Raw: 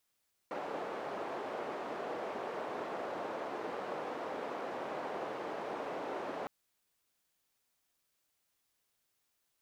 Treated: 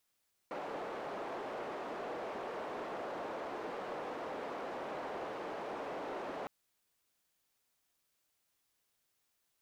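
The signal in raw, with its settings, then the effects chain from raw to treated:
band-limited noise 430–620 Hz, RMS −40 dBFS 5.96 s
soft clipping −34 dBFS

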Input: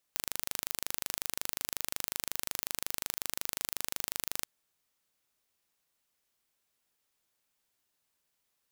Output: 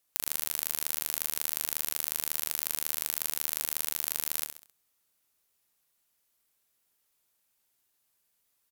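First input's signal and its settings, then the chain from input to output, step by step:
impulse train 25.5 per second, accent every 0, −5.5 dBFS 4.31 s
parametric band 13,000 Hz +7.5 dB 1 octave
on a send: repeating echo 66 ms, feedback 39%, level −8 dB

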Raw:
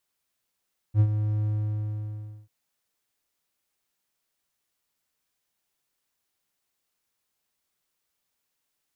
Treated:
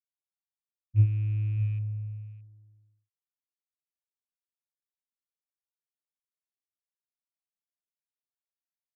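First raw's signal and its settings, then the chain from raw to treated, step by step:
note with an ADSR envelope triangle 106 Hz, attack 62 ms, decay 66 ms, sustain −9 dB, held 0.51 s, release 1,030 ms −12 dBFS
loose part that buzzes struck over −26 dBFS, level −29 dBFS
single-tap delay 621 ms −12 dB
every bin expanded away from the loudest bin 1.5 to 1

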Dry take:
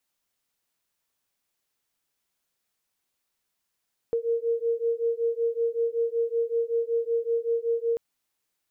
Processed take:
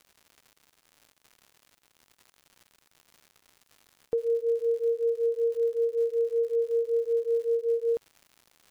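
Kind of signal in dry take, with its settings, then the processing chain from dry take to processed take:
two tones that beat 461 Hz, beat 5.3 Hz, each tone −26.5 dBFS 3.84 s
surface crackle 170 per second −43 dBFS

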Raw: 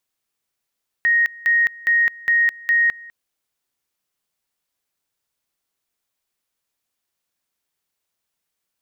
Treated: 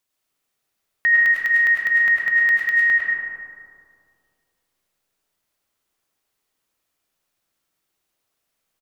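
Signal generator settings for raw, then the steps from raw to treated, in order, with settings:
tone at two levels in turn 1,870 Hz −13 dBFS, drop 23 dB, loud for 0.21 s, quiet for 0.20 s, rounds 5
single-tap delay 104 ms −9 dB
comb and all-pass reverb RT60 2.4 s, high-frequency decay 0.3×, pre-delay 60 ms, DRR −3 dB

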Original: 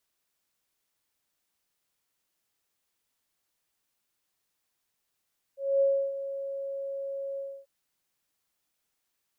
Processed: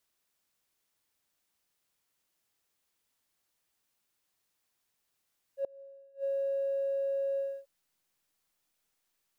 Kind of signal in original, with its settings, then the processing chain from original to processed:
note with an ADSR envelope sine 550 Hz, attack 240 ms, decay 310 ms, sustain −12.5 dB, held 1.81 s, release 278 ms −19.5 dBFS
in parallel at −5.5 dB: slack as between gear wheels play −42.5 dBFS
on the sum: gate with flip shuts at −26 dBFS, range −30 dB

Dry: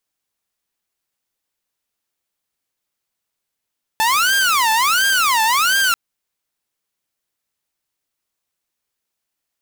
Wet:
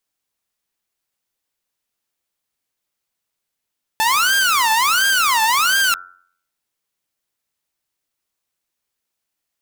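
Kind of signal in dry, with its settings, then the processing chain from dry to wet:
siren wail 878–1,600 Hz 1.4 per second saw −11 dBFS 1.94 s
hum removal 89.63 Hz, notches 20

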